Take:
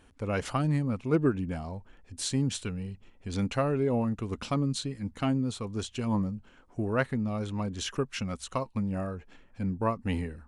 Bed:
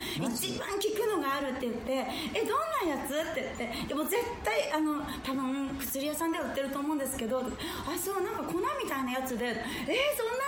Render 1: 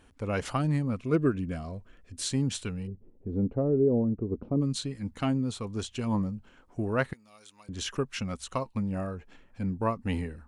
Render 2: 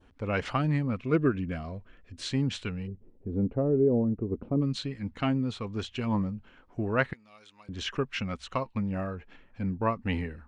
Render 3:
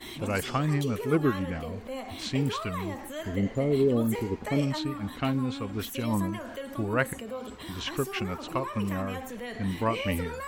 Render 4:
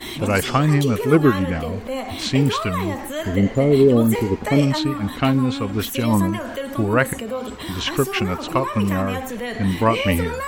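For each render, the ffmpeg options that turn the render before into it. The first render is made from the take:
-filter_complex "[0:a]asettb=1/sr,asplit=3[a][b][c];[a]atrim=end=0.944[d];[b]atrim=start=0.94:end=2.28,asetpts=PTS-STARTPTS,afade=t=in:d=0.004:c=qsin,afade=t=out:st=1.336:d=0.004:c=qsin,asuperstop=centerf=850:order=4:qfactor=3.7[e];[c]atrim=start=2.276[f];[d][e]acrossfade=d=0.004:c1=hsin:c2=qsin[g];[g][f]acrossfade=d=0.004:c1=qsin:c2=hsin,asplit=3[h][i][j];[h]afade=t=out:st=2.86:d=0.02[k];[i]lowpass=f=410:t=q:w=1.8,afade=t=in:st=2.86:d=0.02,afade=t=out:st=4.6:d=0.02[l];[j]afade=t=in:st=4.6:d=0.02[m];[k][l][m]amix=inputs=3:normalize=0,asettb=1/sr,asplit=3[n][o][p];[n]atrim=end=7.134[q];[o]atrim=start=7.13:end=7.69,asetpts=PTS-STARTPTS,afade=t=in:d=0.004:c=qsin,afade=t=out:st=0.556:d=0.004:c=qsin,aderivative[r];[p]atrim=start=7.686[s];[q][r]acrossfade=d=0.004:c1=hsin:c2=qsin[t];[t][s]acrossfade=d=0.004:c1=qsin:c2=hsin"
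-af "lowpass=4.2k,adynamicequalizer=threshold=0.00282:dfrequency=2200:dqfactor=0.92:tfrequency=2200:tqfactor=0.92:attack=5:release=100:ratio=0.375:range=2.5:mode=boostabove:tftype=bell"
-filter_complex "[1:a]volume=-5.5dB[a];[0:a][a]amix=inputs=2:normalize=0"
-af "volume=10dB,alimiter=limit=-3dB:level=0:latency=1"

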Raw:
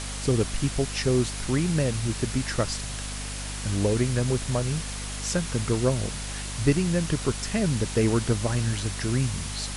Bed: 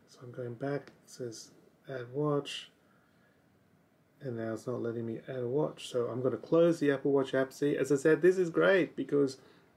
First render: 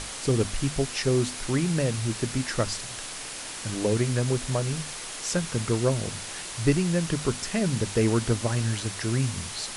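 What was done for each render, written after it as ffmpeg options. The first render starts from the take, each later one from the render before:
-af "bandreject=f=50:t=h:w=6,bandreject=f=100:t=h:w=6,bandreject=f=150:t=h:w=6,bandreject=f=200:t=h:w=6,bandreject=f=250:t=h:w=6"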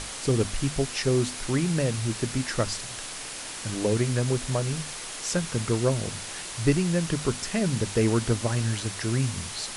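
-af anull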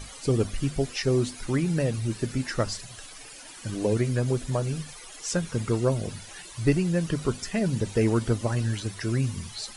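-af "afftdn=nr=14:nf=-37"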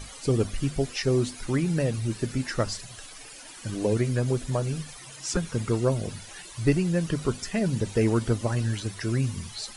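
-filter_complex "[0:a]asettb=1/sr,asplit=3[a][b][c];[a]atrim=end=4.974[d];[b]atrim=start=4.97:end=5.37,asetpts=PTS-STARTPTS,afade=t=in:d=0.004:c=qsin,afade=t=out:st=0.396:d=0.004:c=qsin,afreqshift=-150[e];[c]atrim=start=5.366[f];[d][e]acrossfade=d=0.004:c1=hsin:c2=qsin[g];[g][f]acrossfade=d=0.004:c1=qsin:c2=hsin"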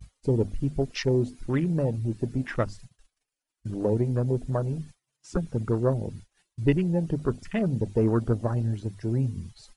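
-af "agate=range=-29dB:threshold=-40dB:ratio=16:detection=peak,afwtdn=0.0178"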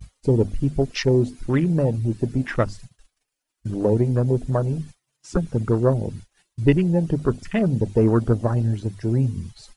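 -af "volume=5.5dB"

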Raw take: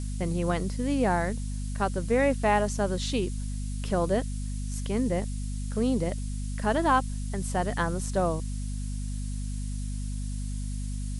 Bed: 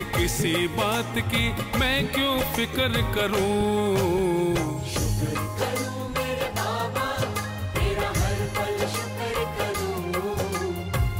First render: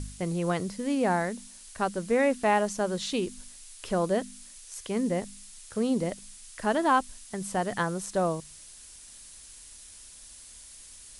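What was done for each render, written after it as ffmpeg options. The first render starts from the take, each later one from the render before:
-af "bandreject=f=50:t=h:w=4,bandreject=f=100:t=h:w=4,bandreject=f=150:t=h:w=4,bandreject=f=200:t=h:w=4,bandreject=f=250:t=h:w=4"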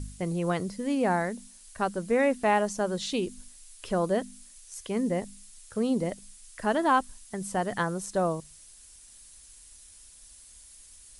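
-af "afftdn=nr=6:nf=-49"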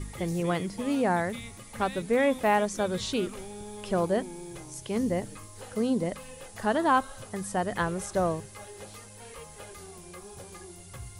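-filter_complex "[1:a]volume=-19dB[a];[0:a][a]amix=inputs=2:normalize=0"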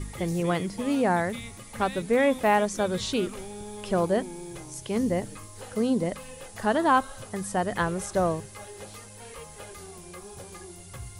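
-af "volume=2dB"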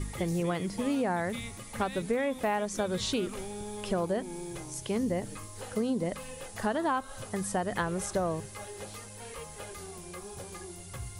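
-af "acompressor=threshold=-26dB:ratio=6"

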